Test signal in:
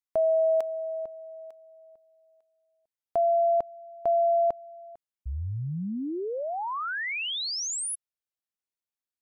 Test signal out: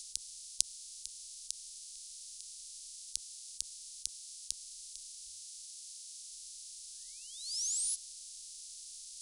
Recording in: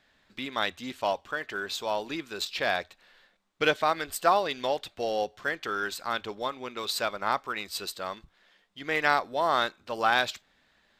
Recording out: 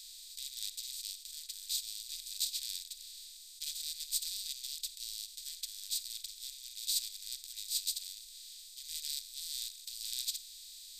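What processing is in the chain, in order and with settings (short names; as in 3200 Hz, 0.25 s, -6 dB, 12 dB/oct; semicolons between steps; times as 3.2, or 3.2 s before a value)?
per-bin compression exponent 0.2; inverse Chebyshev band-stop 120–1200 Hz, stop band 70 dB; upward expander 2.5:1, over -36 dBFS; gain -1 dB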